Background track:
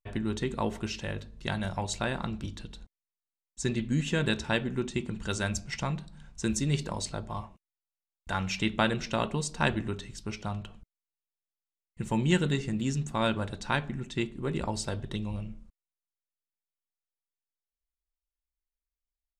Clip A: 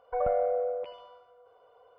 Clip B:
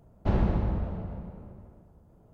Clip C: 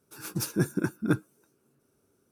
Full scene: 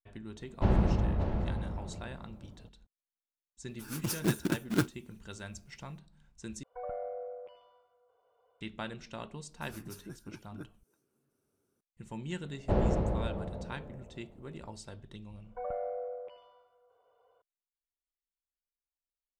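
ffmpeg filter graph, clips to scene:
-filter_complex "[2:a]asplit=2[a][b];[3:a]asplit=2[c][d];[1:a]asplit=2[e][f];[0:a]volume=-13.5dB[g];[a]aecho=1:1:576:0.422[h];[c]acrusher=bits=2:mode=log:mix=0:aa=0.000001[i];[d]acompressor=threshold=-43dB:ratio=2:attack=14:release=177:knee=1:detection=rms[j];[b]equalizer=f=520:w=1.3:g=9.5[k];[g]asplit=2[l][m];[l]atrim=end=6.634[n];[e]atrim=end=1.98,asetpts=PTS-STARTPTS,volume=-12dB[o];[m]atrim=start=8.606[p];[h]atrim=end=2.33,asetpts=PTS-STARTPTS,volume=-1dB,afade=t=in:d=0.004:c=hsin,afade=t=out:st=2.326:d=0.004:c=hsin,adelay=360[q];[i]atrim=end=2.31,asetpts=PTS-STARTPTS,volume=-3.5dB,afade=t=in:d=0.004:c=hsin,afade=t=out:st=2.306:d=0.004:c=hsin,adelay=3680[r];[j]atrim=end=2.31,asetpts=PTS-STARTPTS,volume=-9dB,afade=t=in:d=0.004:c=hsin,afade=t=out:st=2.306:d=0.004:c=hsin,adelay=9500[s];[k]atrim=end=2.33,asetpts=PTS-STARTPTS,volume=-4.5dB,afade=t=in:d=0.004:c=hsin,afade=t=out:st=2.326:d=0.004:c=hsin,adelay=12430[t];[f]atrim=end=1.98,asetpts=PTS-STARTPTS,volume=-9.5dB,afade=t=in:d=0.004:c=hsin,afade=t=out:st=1.976:d=0.004:c=hsin,adelay=15440[u];[n][o]acrossfade=d=0.004:c1=hsin:c2=hsin[v];[v][p]acrossfade=d=0.004:c1=hsin:c2=hsin[w];[w][q][r][s][t][u]amix=inputs=6:normalize=0"

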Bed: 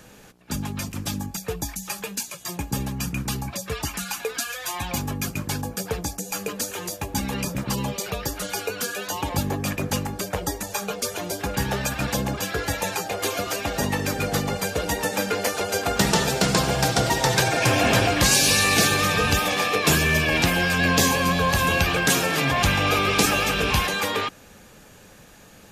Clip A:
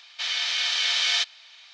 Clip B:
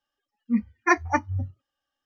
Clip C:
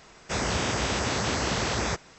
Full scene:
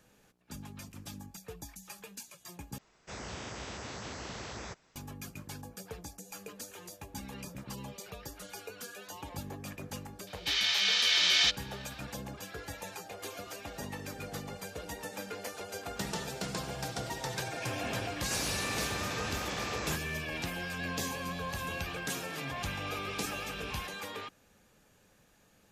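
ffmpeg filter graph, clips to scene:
-filter_complex "[3:a]asplit=2[a][b];[0:a]volume=-16.5dB[c];[1:a]lowshelf=f=370:g=-10.5[d];[b]acompressor=threshold=-32dB:ratio=6:attack=3.2:release=140:knee=1:detection=peak[e];[c]asplit=2[f][g];[f]atrim=end=2.784[h];[a]atrim=end=2.18,asetpts=PTS-STARTPTS,volume=-15dB[i];[g]atrim=start=4.956[j];[d]atrim=end=1.73,asetpts=PTS-STARTPTS,volume=-2dB,afade=t=in:d=0.004:c=hsin,afade=t=out:st=1.726:d=0.004:c=hsin,adelay=10270[k];[e]atrim=end=2.18,asetpts=PTS-STARTPTS,volume=-3dB,afade=t=in:d=0.004:c=hsin,afade=t=out:st=2.176:d=0.004:c=hsin,adelay=18010[l];[h][i]acrossfade=d=0.004:c1=hsin:c2=hsin[m];[m][j]acrossfade=d=0.004:c1=hsin:c2=hsin[n];[n][k][l]amix=inputs=3:normalize=0"

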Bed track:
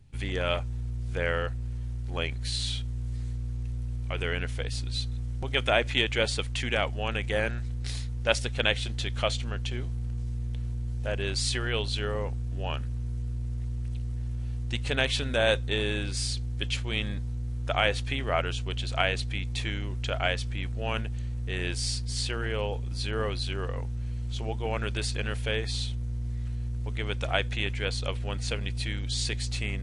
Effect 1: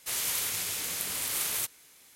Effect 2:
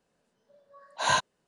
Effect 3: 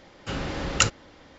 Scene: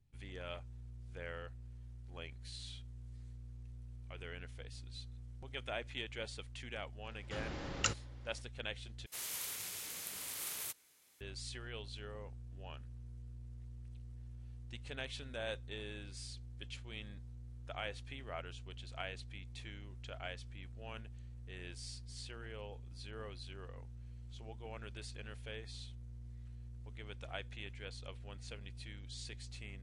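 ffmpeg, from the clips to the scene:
-filter_complex "[0:a]volume=-17.5dB,asplit=2[a][b];[a]atrim=end=9.064[c];[1:a]atrim=end=2.15,asetpts=PTS-STARTPTS,volume=-11.5dB[d];[b]atrim=start=11.206[e];[3:a]atrim=end=1.38,asetpts=PTS-STARTPTS,volume=-13dB,afade=t=in:d=0.004:c=hsin,afade=t=out:st=1.376:d=0.004:c=hsin,adelay=7040[f];[c][d]acrossfade=d=0.004:c1=hsin:c2=hsin[g];[g][e]acrossfade=d=0.004:c1=hsin:c2=hsin[h];[h][f]amix=inputs=2:normalize=0"

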